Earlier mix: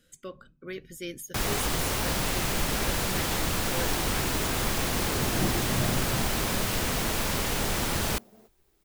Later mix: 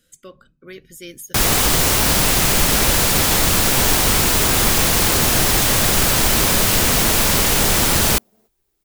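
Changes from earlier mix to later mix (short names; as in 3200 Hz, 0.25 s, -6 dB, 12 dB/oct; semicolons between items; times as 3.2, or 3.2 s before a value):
first sound +10.0 dB; second sound -6.0 dB; master: add high shelf 4300 Hz +6.5 dB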